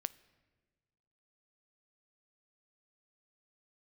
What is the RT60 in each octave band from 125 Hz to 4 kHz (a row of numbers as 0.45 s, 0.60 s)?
1.7 s, 1.7 s, 1.6 s, 1.3 s, 1.3 s, 1.0 s